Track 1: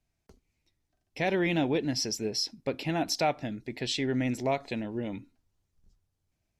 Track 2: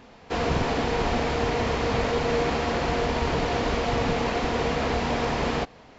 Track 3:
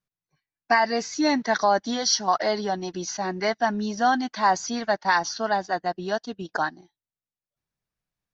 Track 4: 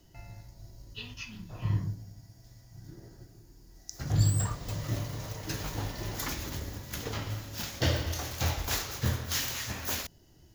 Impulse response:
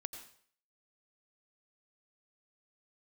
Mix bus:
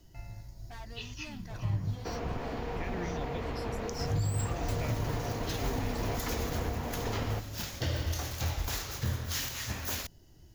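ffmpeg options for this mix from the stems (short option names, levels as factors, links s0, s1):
-filter_complex "[0:a]asplit=2[s0][s1];[s1]afreqshift=-0.96[s2];[s0][s2]amix=inputs=2:normalize=1,adelay=1600,volume=0.316[s3];[1:a]highshelf=f=3800:g=-12,acompressor=threshold=0.0126:ratio=2,adelay=1750,volume=0.668[s4];[2:a]asoftclip=type=tanh:threshold=0.0473,volume=0.106[s5];[3:a]volume=0.891[s6];[s3][s4][s5][s6]amix=inputs=4:normalize=0,lowshelf=f=75:g=7.5,alimiter=limit=0.0794:level=0:latency=1:release=151"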